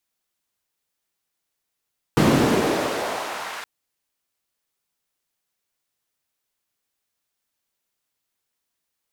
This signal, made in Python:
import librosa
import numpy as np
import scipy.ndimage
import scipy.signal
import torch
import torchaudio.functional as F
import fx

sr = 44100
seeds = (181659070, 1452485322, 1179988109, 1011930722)

y = fx.riser_noise(sr, seeds[0], length_s=1.47, colour='white', kind='bandpass', start_hz=170.0, end_hz=1300.0, q=1.3, swell_db=-28, law='exponential')